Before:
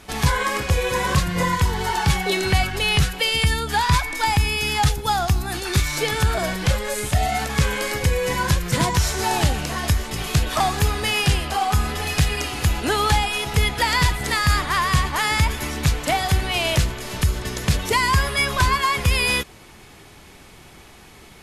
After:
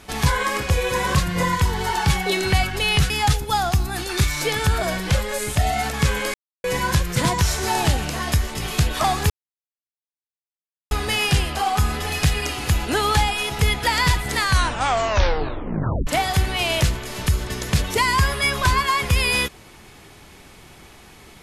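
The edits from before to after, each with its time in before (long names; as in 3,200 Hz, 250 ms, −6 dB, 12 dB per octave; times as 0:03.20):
0:03.10–0:04.66: remove
0:07.90–0:08.20: silence
0:10.86: splice in silence 1.61 s
0:14.33: tape stop 1.69 s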